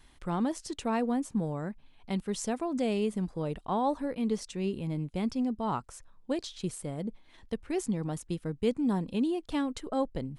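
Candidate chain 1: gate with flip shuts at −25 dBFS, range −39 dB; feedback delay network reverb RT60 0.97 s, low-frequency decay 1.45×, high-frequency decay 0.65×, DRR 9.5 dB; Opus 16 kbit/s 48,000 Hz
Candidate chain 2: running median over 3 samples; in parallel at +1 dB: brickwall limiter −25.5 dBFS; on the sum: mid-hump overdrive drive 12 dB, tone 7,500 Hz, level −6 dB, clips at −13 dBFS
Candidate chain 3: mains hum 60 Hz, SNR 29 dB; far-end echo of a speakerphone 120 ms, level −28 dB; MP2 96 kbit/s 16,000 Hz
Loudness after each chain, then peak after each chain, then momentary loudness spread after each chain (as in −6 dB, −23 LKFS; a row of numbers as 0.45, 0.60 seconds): −43.5, −26.5, −32.5 LKFS; −22.5, −13.5, −16.0 dBFS; 17, 7, 8 LU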